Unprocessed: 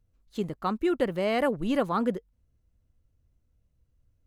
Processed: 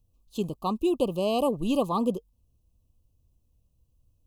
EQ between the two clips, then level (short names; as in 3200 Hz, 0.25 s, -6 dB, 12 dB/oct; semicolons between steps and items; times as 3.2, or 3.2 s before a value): Chebyshev band-stop 1200–2500 Hz, order 5; high shelf 7000 Hz +8.5 dB; +1.5 dB